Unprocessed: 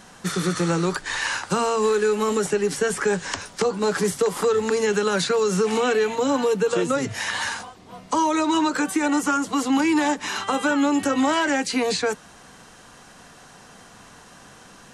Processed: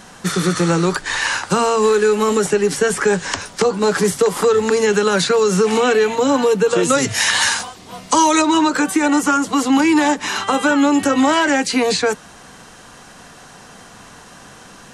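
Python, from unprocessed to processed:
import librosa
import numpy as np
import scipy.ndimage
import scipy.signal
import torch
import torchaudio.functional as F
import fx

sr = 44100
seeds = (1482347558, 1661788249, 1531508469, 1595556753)

y = fx.high_shelf(x, sr, hz=2400.0, db=9.5, at=(6.83, 8.42))
y = y * librosa.db_to_amplitude(6.0)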